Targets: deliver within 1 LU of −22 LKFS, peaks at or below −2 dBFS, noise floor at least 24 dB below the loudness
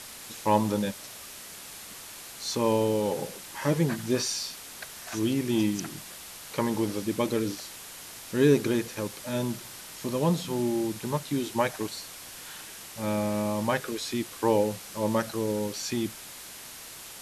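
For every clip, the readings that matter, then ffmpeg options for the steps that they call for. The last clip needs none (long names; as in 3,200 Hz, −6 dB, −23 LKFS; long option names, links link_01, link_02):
background noise floor −44 dBFS; target noise floor −53 dBFS; integrated loudness −29.0 LKFS; sample peak −9.5 dBFS; target loudness −22.0 LKFS
→ -af "afftdn=noise_reduction=9:noise_floor=-44"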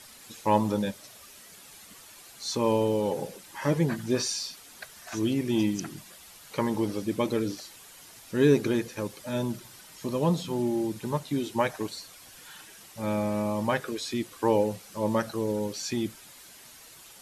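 background noise floor −50 dBFS; target noise floor −53 dBFS
→ -af "afftdn=noise_reduction=6:noise_floor=-50"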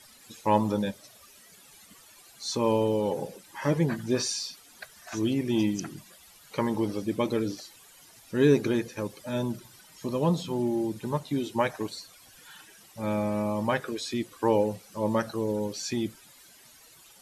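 background noise floor −55 dBFS; integrated loudness −29.0 LKFS; sample peak −9.5 dBFS; target loudness −22.0 LKFS
→ -af "volume=7dB"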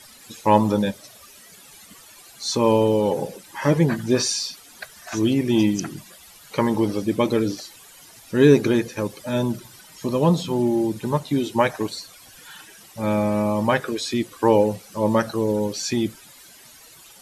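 integrated loudness −22.0 LKFS; sample peak −2.5 dBFS; background noise floor −48 dBFS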